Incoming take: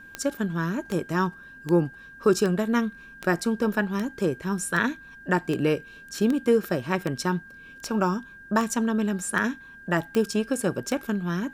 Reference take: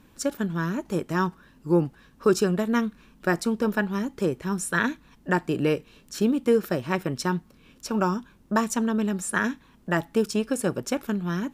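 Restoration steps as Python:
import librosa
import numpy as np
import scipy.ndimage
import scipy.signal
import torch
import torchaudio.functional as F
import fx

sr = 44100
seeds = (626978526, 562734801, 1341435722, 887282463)

y = fx.fix_declick_ar(x, sr, threshold=10.0)
y = fx.notch(y, sr, hz=1600.0, q=30.0)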